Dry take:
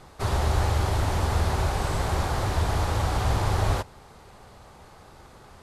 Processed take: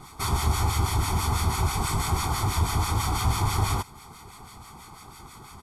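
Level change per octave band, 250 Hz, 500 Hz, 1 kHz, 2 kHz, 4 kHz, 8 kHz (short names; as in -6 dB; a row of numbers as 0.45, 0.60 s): 0.0, -6.5, +1.0, -1.0, +3.0, +7.0 dB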